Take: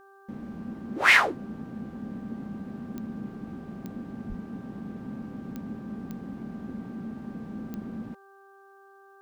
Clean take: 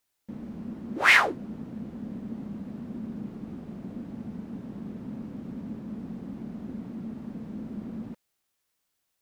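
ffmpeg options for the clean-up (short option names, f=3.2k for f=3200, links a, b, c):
-filter_complex "[0:a]adeclick=t=4,bandreject=f=392.5:t=h:w=4,bandreject=f=785:t=h:w=4,bandreject=f=1.1775k:t=h:w=4,bandreject=f=1.57k:t=h:w=4,asplit=3[a][b][c];[a]afade=t=out:st=4.28:d=0.02[d];[b]highpass=f=140:w=0.5412,highpass=f=140:w=1.3066,afade=t=in:st=4.28:d=0.02,afade=t=out:st=4.4:d=0.02[e];[c]afade=t=in:st=4.4:d=0.02[f];[d][e][f]amix=inputs=3:normalize=0"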